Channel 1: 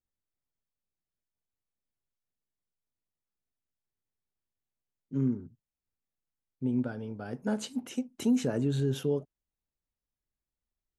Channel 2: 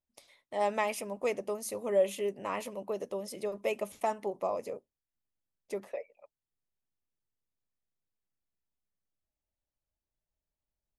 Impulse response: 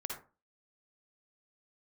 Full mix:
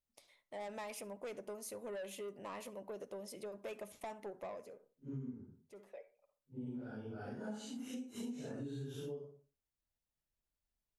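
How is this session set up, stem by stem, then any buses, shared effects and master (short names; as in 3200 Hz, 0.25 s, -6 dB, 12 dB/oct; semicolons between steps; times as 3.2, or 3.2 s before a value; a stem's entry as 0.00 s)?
-5.5 dB, 0.00 s, send -9.5 dB, phase scrambler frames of 0.2 s
-7.5 dB, 0.00 s, send -16 dB, soft clip -29.5 dBFS, distortion -9 dB; auto duck -23 dB, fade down 0.55 s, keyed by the first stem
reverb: on, RT60 0.35 s, pre-delay 47 ms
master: compressor 6:1, threshold -42 dBFS, peak gain reduction 17 dB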